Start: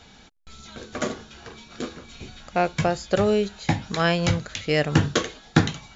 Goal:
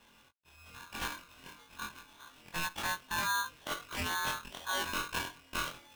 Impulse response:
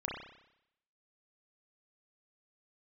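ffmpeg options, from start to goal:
-af "afftfilt=real='re':imag='-im':win_size=2048:overlap=0.75,equalizer=frequency=680:width_type=o:width=0.67:gain=-14,highpass=frequency=290:width_type=q:width=0.5412,highpass=frequency=290:width_type=q:width=1.307,lowpass=frequency=2300:width_type=q:width=0.5176,lowpass=frequency=2300:width_type=q:width=0.7071,lowpass=frequency=2300:width_type=q:width=1.932,afreqshift=-120,alimiter=level_in=1.5dB:limit=-24dB:level=0:latency=1:release=20,volume=-1.5dB,aeval=exprs='val(0)*sgn(sin(2*PI*1300*n/s))':channel_layout=same"

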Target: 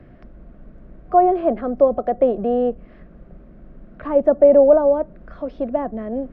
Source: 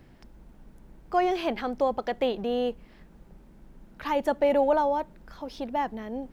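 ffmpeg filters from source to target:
ffmpeg -i in.wav -filter_complex "[0:a]superequalizer=8b=1.58:9b=0.355,acrossover=split=200|1100[link_01][link_02][link_03];[link_03]acompressor=threshold=-51dB:ratio=6[link_04];[link_01][link_02][link_04]amix=inputs=3:normalize=0,lowpass=1700,volume=8.5dB" out.wav

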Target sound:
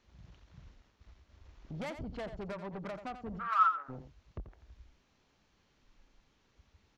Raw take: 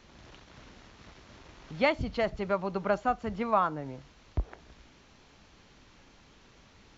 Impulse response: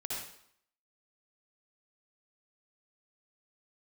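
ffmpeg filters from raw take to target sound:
-filter_complex "[0:a]asplit=3[link_01][link_02][link_03];[link_01]afade=type=out:start_time=0.74:duration=0.02[link_04];[link_02]agate=range=-33dB:threshold=-49dB:ratio=3:detection=peak,afade=type=in:start_time=0.74:duration=0.02,afade=type=out:start_time=1.43:duration=0.02[link_05];[link_03]afade=type=in:start_time=1.43:duration=0.02[link_06];[link_04][link_05][link_06]amix=inputs=3:normalize=0,afwtdn=0.0112,acompressor=threshold=-34dB:ratio=8,asoftclip=type=tanh:threshold=-39dB,asplit=3[link_07][link_08][link_09];[link_07]afade=type=out:start_time=3.38:duration=0.02[link_10];[link_08]highpass=frequency=1300:width_type=q:width=16,afade=type=in:start_time=3.38:duration=0.02,afade=type=out:start_time=3.88:duration=0.02[link_11];[link_09]afade=type=in:start_time=3.88:duration=0.02[link_12];[link_10][link_11][link_12]amix=inputs=3:normalize=0,aecho=1:1:87:0.299,volume=2.5dB"

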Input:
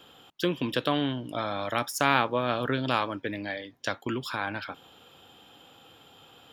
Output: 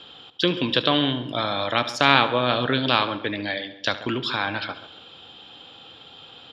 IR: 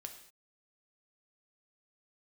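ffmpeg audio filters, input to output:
-filter_complex "[0:a]lowpass=frequency=4000:width_type=q:width=2.8,asplit=2[link_01][link_02];[link_02]adelay=136,lowpass=frequency=1700:poles=1,volume=-14dB,asplit=2[link_03][link_04];[link_04]adelay=136,lowpass=frequency=1700:poles=1,volume=0.37,asplit=2[link_05][link_06];[link_06]adelay=136,lowpass=frequency=1700:poles=1,volume=0.37,asplit=2[link_07][link_08];[link_08]adelay=136,lowpass=frequency=1700:poles=1,volume=0.37[link_09];[link_01][link_03][link_05][link_07][link_09]amix=inputs=5:normalize=0,asplit=2[link_10][link_11];[1:a]atrim=start_sample=2205,adelay=72[link_12];[link_11][link_12]afir=irnorm=-1:irlink=0,volume=-10dB[link_13];[link_10][link_13]amix=inputs=2:normalize=0,volume=4.5dB"

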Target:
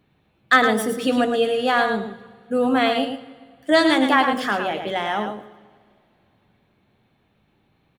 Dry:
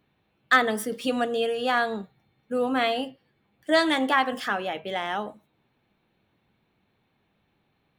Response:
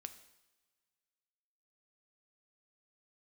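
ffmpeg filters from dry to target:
-filter_complex "[0:a]aecho=1:1:110:0.447,asplit=2[link_01][link_02];[1:a]atrim=start_sample=2205,asetrate=24255,aresample=44100,lowshelf=frequency=500:gain=8.5[link_03];[link_02][link_03]afir=irnorm=-1:irlink=0,volume=-3.5dB[link_04];[link_01][link_04]amix=inputs=2:normalize=0"

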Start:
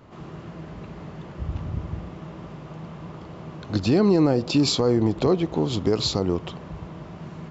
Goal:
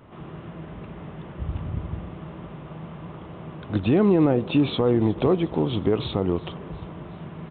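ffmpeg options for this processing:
ffmpeg -i in.wav -af "acrusher=bits=8:mode=log:mix=0:aa=0.000001,aecho=1:1:362|724|1086|1448:0.0841|0.048|0.0273|0.0156,aresample=8000,aresample=44100" out.wav

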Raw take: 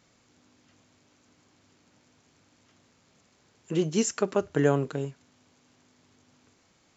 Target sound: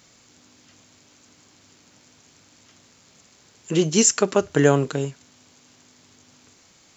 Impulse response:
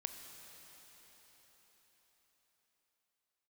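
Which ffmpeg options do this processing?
-af "highshelf=frequency=3200:gain=9.5,volume=6dB"

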